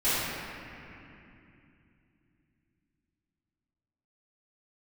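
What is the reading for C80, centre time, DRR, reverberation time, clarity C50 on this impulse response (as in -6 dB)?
-2.5 dB, 0.187 s, -16.0 dB, 2.8 s, -5.0 dB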